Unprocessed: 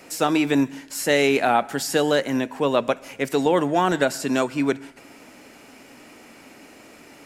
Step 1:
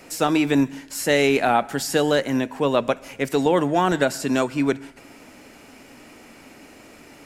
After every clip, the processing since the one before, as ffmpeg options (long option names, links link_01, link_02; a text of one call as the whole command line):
ffmpeg -i in.wav -af "lowshelf=frequency=92:gain=9.5" out.wav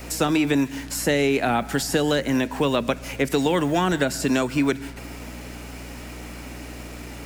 ffmpeg -i in.wav -filter_complex "[0:a]aeval=exprs='val(0)+0.00631*(sin(2*PI*60*n/s)+sin(2*PI*2*60*n/s)/2+sin(2*PI*3*60*n/s)/3+sin(2*PI*4*60*n/s)/4+sin(2*PI*5*60*n/s)/5)':channel_layout=same,acrusher=bits=7:mix=0:aa=0.5,acrossover=split=330|1400[link_01][link_02][link_03];[link_01]acompressor=threshold=-29dB:ratio=4[link_04];[link_02]acompressor=threshold=-32dB:ratio=4[link_05];[link_03]acompressor=threshold=-33dB:ratio=4[link_06];[link_04][link_05][link_06]amix=inputs=3:normalize=0,volume=6dB" out.wav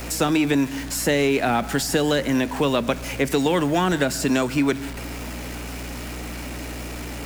ffmpeg -i in.wav -af "aeval=exprs='val(0)+0.5*0.0224*sgn(val(0))':channel_layout=same" out.wav